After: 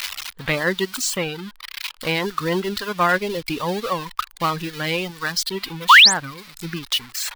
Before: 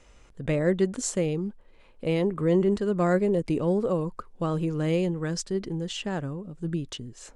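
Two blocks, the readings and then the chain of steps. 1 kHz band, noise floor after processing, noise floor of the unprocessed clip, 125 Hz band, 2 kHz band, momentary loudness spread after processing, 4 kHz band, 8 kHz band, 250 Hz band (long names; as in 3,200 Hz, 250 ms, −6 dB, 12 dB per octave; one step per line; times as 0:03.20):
+16.0 dB, −48 dBFS, −55 dBFS, −3.0 dB, +20.5 dB, 19 LU, +22.0 dB, +10.5 dB, −2.5 dB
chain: spike at every zero crossing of −22.5 dBFS
reverb reduction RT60 1.8 s
sound drawn into the spectrogram rise, 0:05.89–0:06.14, 880–9,500 Hz −22 dBFS
flat-topped bell 2,000 Hz +14.5 dB 2.9 octaves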